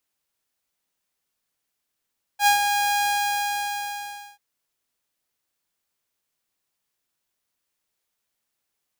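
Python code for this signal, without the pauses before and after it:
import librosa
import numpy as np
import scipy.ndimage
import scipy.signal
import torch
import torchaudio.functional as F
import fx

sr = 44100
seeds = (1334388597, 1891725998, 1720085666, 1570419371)

y = fx.adsr_tone(sr, wave='saw', hz=818.0, attack_ms=77.0, decay_ms=112.0, sustain_db=-6.5, held_s=0.62, release_ms=1370.0, level_db=-11.0)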